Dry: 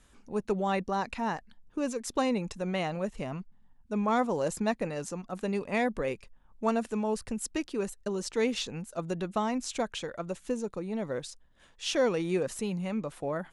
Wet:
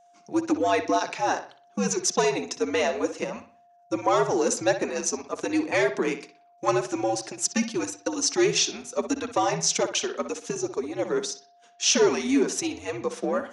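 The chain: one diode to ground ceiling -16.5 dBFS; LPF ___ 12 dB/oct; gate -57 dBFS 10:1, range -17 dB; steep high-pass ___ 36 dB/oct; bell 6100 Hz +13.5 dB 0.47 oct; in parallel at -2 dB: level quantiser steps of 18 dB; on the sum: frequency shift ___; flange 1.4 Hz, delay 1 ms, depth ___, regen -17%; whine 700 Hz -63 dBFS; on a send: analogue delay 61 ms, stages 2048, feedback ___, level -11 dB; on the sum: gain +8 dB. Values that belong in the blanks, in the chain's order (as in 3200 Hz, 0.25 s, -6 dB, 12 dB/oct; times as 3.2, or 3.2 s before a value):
8200 Hz, 300 Hz, -92 Hz, 5.1 ms, 35%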